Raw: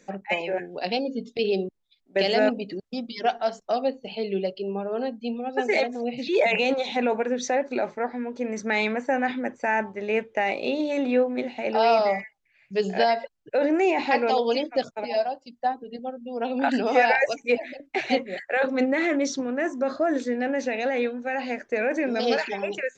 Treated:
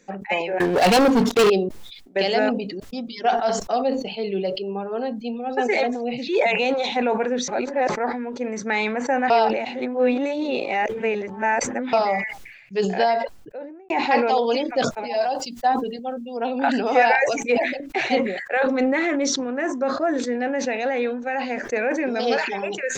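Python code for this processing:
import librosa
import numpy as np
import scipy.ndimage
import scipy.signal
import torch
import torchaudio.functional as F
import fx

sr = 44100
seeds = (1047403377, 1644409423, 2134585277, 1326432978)

y = fx.leveller(x, sr, passes=5, at=(0.6, 1.5))
y = fx.studio_fade_out(y, sr, start_s=12.91, length_s=0.99)
y = fx.high_shelf(y, sr, hz=2200.0, db=9.0, at=(15.21, 16.37))
y = fx.sustainer(y, sr, db_per_s=20.0, at=(18.51, 19.36))
y = fx.edit(y, sr, fx.reverse_span(start_s=7.48, length_s=0.41),
    fx.reverse_span(start_s=9.3, length_s=2.63), tone=tone)
y = fx.notch(y, sr, hz=620.0, q=12.0)
y = fx.dynamic_eq(y, sr, hz=920.0, q=0.86, threshold_db=-37.0, ratio=4.0, max_db=4)
y = fx.sustainer(y, sr, db_per_s=59.0)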